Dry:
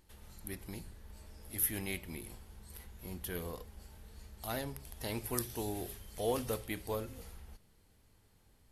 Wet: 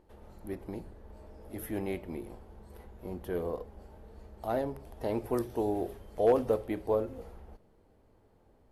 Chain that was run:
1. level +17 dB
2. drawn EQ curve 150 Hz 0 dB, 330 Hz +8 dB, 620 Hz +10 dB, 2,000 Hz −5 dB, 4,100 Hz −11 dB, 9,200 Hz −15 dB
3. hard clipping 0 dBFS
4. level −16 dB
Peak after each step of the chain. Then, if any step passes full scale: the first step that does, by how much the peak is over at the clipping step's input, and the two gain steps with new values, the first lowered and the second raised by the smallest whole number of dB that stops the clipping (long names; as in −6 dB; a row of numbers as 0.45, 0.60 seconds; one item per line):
+4.5, +3.5, 0.0, −16.0 dBFS
step 1, 3.5 dB
step 1 +13 dB, step 4 −12 dB